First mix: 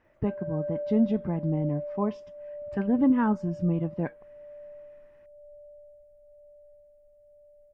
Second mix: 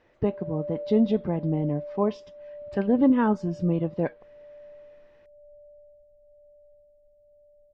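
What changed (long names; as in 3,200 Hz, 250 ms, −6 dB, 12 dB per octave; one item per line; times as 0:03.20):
background: add moving average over 52 samples
master: add graphic EQ with 10 bands 500 Hz +8 dB, 4,000 Hz +11 dB, 8,000 Hz +3 dB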